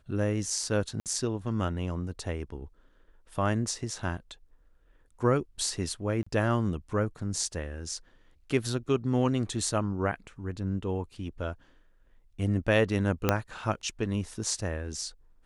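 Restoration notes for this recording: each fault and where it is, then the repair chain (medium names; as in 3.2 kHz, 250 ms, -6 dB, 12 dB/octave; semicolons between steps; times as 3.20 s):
1.00–1.06 s: dropout 58 ms
6.23–6.26 s: dropout 35 ms
13.29 s: pop -8 dBFS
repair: de-click; interpolate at 1.00 s, 58 ms; interpolate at 6.23 s, 35 ms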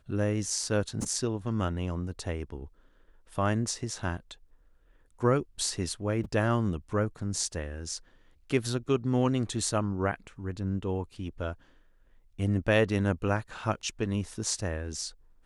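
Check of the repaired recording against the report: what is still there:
13.29 s: pop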